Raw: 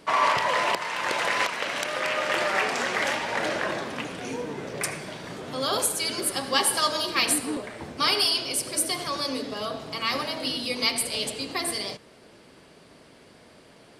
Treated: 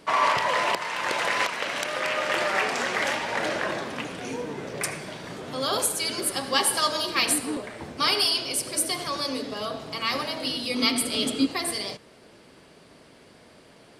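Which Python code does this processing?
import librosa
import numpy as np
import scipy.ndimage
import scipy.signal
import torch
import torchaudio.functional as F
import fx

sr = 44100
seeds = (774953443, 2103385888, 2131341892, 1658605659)

y = fx.small_body(x, sr, hz=(270.0, 1300.0, 3300.0), ring_ms=45, db=fx.line((10.73, 12.0), (11.45, 17.0)), at=(10.73, 11.45), fade=0.02)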